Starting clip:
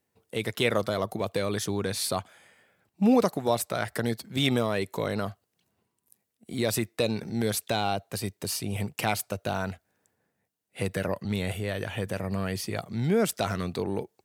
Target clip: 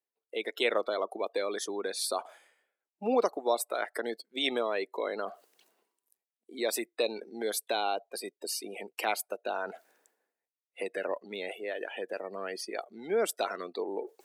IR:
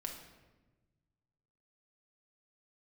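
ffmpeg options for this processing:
-af "highpass=f=330:w=0.5412,highpass=f=330:w=1.3066,afftdn=nr=22:nf=-39,areverse,acompressor=mode=upward:threshold=-34dB:ratio=2.5,areverse,volume=-2dB"

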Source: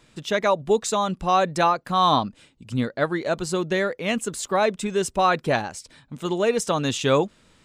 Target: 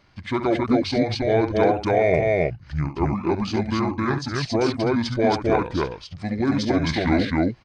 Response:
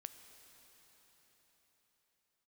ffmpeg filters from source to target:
-af "aecho=1:1:67.06|268.2:0.316|0.891,asetrate=26222,aresample=44100,atempo=1.68179,volume=-1dB"

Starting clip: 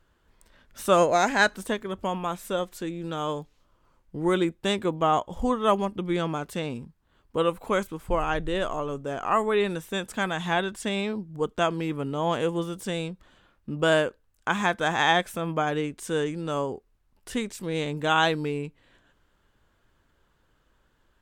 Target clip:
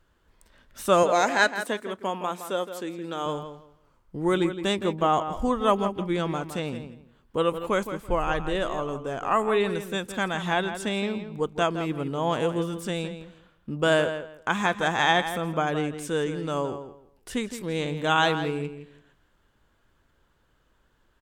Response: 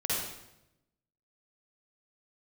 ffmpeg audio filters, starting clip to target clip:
-filter_complex "[0:a]asettb=1/sr,asplit=3[a][b][c];[a]atrim=end=1.034[d];[b]atrim=start=1.03:end=3.26,asetpts=PTS-STARTPTS,afade=t=in:d=0.004:c=qsin,afade=t=out:st=2.226:d=0.004:c=qsin,highpass=250[e];[c]atrim=start=3.256[f];[d][e]acrossfade=d=0.004:c1=hsin:c2=qsin[g];[g][f]acrossfade=d=0.004:c1=qsin:c2=hsin,asplit=2[h][i];[i]adelay=166,lowpass=f=3.9k:p=1,volume=-10dB,asplit=2[j][k];[k]adelay=166,lowpass=f=3.9k:p=1,volume=0.21,asplit=2[l][m];[m]adelay=166,lowpass=f=3.9k:p=1,volume=0.21[n];[h][j][l][n]amix=inputs=4:normalize=0"

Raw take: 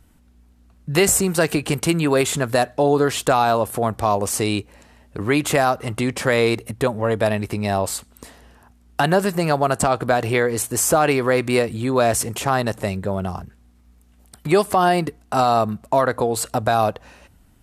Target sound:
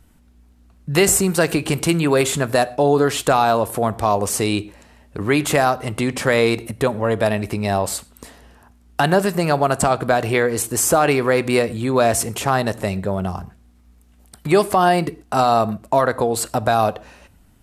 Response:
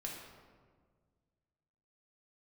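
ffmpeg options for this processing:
-filter_complex "[0:a]asplit=2[a][b];[1:a]atrim=start_sample=2205,atrim=end_sample=6174[c];[b][c]afir=irnorm=-1:irlink=0,volume=-12dB[d];[a][d]amix=inputs=2:normalize=0"

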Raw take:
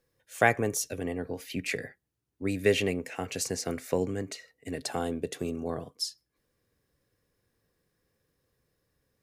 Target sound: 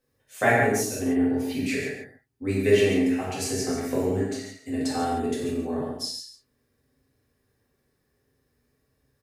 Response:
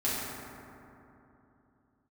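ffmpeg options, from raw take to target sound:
-filter_complex "[0:a]aecho=1:1:140:0.316[a];[1:a]atrim=start_sample=2205,afade=t=out:st=0.23:d=0.01,atrim=end_sample=10584[b];[a][b]afir=irnorm=-1:irlink=0,volume=-4dB"

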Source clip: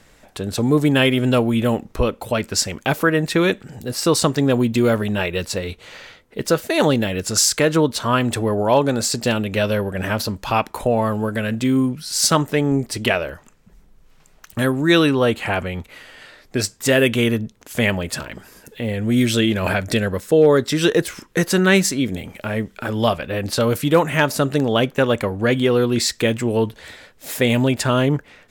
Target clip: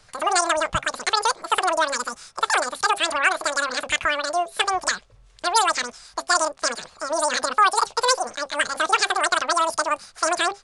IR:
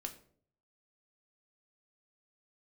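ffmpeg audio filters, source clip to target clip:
-af "equalizer=f=110:t=o:w=1:g=-11.5,bandreject=f=50:t=h:w=6,bandreject=f=100:t=h:w=6,bandreject=f=150:t=h:w=6,bandreject=f=200:t=h:w=6,bandreject=f=250:t=h:w=6,bandreject=f=300:t=h:w=6,asetrate=118188,aresample=44100,aresample=22050,aresample=44100,volume=-2dB"

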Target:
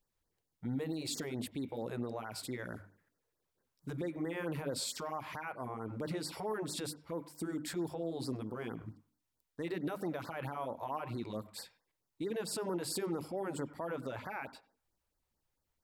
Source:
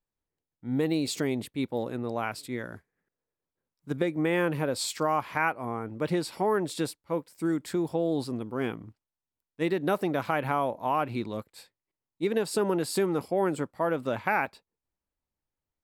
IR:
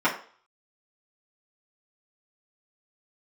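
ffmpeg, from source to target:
-filter_complex "[0:a]bandreject=f=50:t=h:w=6,bandreject=f=100:t=h:w=6,bandreject=f=150:t=h:w=6,bandreject=f=200:t=h:w=6,bandreject=f=250:t=h:w=6,bandreject=f=300:t=h:w=6,acompressor=threshold=-44dB:ratio=2,alimiter=level_in=10.5dB:limit=-24dB:level=0:latency=1:release=14,volume=-10.5dB,asplit=2[a][b];[1:a]atrim=start_sample=2205,lowpass=6k,adelay=91[c];[b][c]afir=irnorm=-1:irlink=0,volume=-31.5dB[d];[a][d]amix=inputs=2:normalize=0,afftfilt=real='re*(1-between(b*sr/1024,200*pow(3000/200,0.5+0.5*sin(2*PI*4.5*pts/sr))/1.41,200*pow(3000/200,0.5+0.5*sin(2*PI*4.5*pts/sr))*1.41))':imag='im*(1-between(b*sr/1024,200*pow(3000/200,0.5+0.5*sin(2*PI*4.5*pts/sr))/1.41,200*pow(3000/200,0.5+0.5*sin(2*PI*4.5*pts/sr))*1.41))':win_size=1024:overlap=0.75,volume=5.5dB"

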